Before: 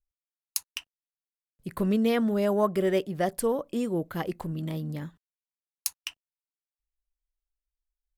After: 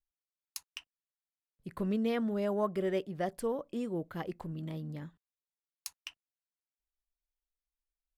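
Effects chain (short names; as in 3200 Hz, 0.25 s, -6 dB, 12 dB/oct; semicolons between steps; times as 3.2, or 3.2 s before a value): high shelf 7500 Hz -10 dB; gain -7 dB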